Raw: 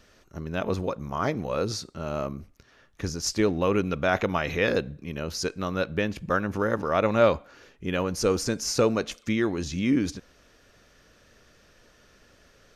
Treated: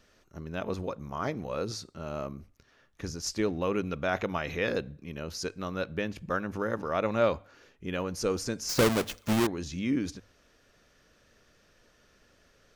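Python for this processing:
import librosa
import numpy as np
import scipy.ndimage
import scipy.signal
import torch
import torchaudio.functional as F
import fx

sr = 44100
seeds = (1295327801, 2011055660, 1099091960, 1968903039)

y = fx.halfwave_hold(x, sr, at=(8.69, 9.47))
y = fx.hum_notches(y, sr, base_hz=50, count=2)
y = F.gain(torch.from_numpy(y), -5.5).numpy()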